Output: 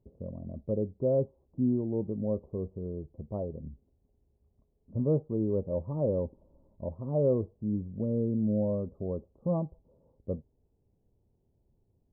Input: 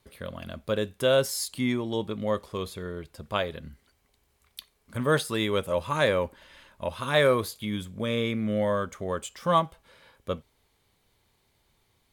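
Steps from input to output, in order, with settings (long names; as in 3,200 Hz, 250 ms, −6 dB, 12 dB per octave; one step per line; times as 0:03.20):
Gaussian smoothing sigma 16 samples
level +1.5 dB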